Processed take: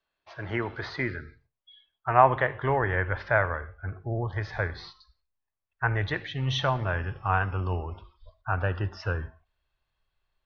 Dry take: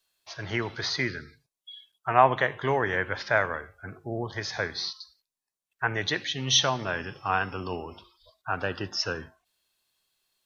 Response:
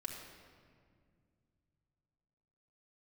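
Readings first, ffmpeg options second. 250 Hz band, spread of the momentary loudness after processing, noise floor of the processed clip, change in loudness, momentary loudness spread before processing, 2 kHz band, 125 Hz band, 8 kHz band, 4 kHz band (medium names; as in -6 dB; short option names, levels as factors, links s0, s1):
-0.5 dB, 15 LU, -84 dBFS, -0.5 dB, 19 LU, -1.0 dB, +7.0 dB, no reading, -10.0 dB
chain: -filter_complex "[0:a]lowpass=1900,asplit=2[s0][s1];[1:a]atrim=start_sample=2205,atrim=end_sample=6174[s2];[s1][s2]afir=irnorm=-1:irlink=0,volume=0.266[s3];[s0][s3]amix=inputs=2:normalize=0,asubboost=boost=10:cutoff=77"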